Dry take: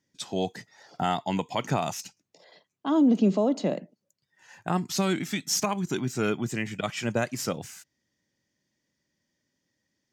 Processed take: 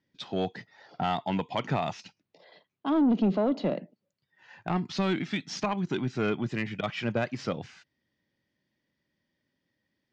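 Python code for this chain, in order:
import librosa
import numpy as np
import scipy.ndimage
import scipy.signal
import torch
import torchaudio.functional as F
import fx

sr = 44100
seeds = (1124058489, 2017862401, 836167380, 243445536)

y = scipy.signal.sosfilt(scipy.signal.butter(4, 4200.0, 'lowpass', fs=sr, output='sos'), x)
y = 10.0 ** (-18.0 / 20.0) * np.tanh(y / 10.0 ** (-18.0 / 20.0))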